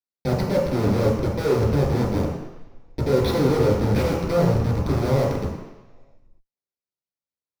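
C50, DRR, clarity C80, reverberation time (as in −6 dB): 2.0 dB, −5.5 dB, 5.0 dB, 1.1 s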